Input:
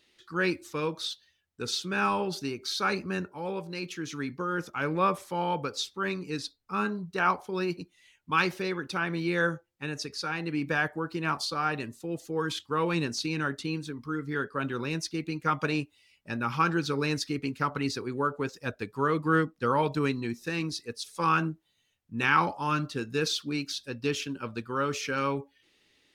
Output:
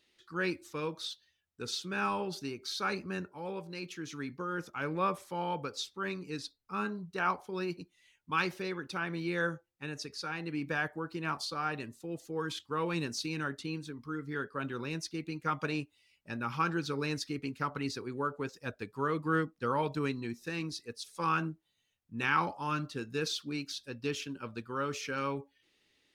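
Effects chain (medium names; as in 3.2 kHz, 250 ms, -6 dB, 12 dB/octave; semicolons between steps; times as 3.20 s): 12.95–13.44 s: treble shelf 8.9 kHz +7 dB; trim -5.5 dB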